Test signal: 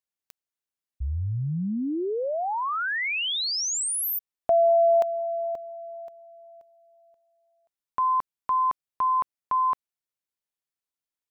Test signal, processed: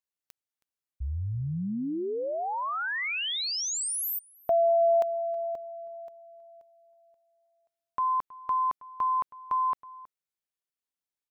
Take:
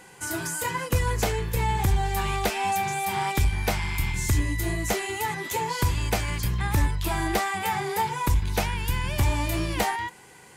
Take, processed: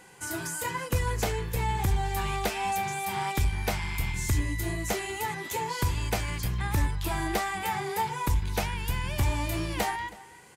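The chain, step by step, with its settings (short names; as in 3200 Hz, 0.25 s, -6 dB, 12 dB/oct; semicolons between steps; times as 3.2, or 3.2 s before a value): outdoor echo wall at 55 m, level -19 dB; gain -3.5 dB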